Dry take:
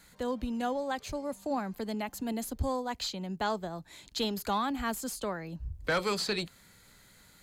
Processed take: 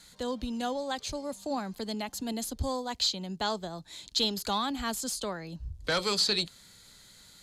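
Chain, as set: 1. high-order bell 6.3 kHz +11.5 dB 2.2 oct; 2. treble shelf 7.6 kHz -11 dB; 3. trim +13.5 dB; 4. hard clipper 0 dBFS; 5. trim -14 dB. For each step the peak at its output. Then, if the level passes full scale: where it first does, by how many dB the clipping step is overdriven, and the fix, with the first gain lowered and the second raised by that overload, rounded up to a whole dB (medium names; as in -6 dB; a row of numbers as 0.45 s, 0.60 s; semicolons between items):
-14.0 dBFS, -16.0 dBFS, -2.5 dBFS, -2.5 dBFS, -16.5 dBFS; nothing clips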